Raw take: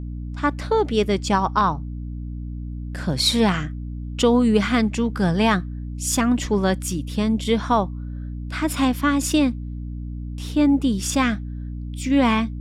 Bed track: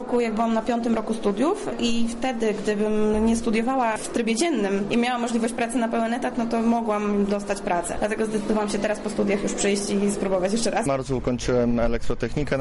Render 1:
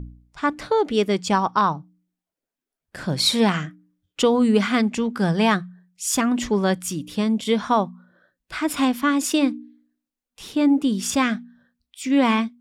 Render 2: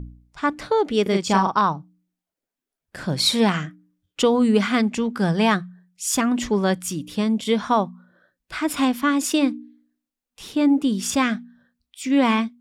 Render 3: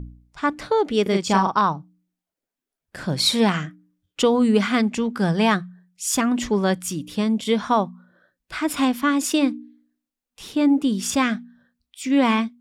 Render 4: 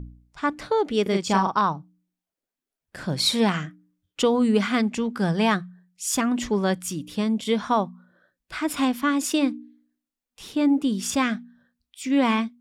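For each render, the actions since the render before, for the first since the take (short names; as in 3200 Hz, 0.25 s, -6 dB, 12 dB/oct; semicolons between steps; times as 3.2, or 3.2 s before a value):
de-hum 60 Hz, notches 5
1.02–1.55 doubler 41 ms -4 dB
nothing audible
gain -2.5 dB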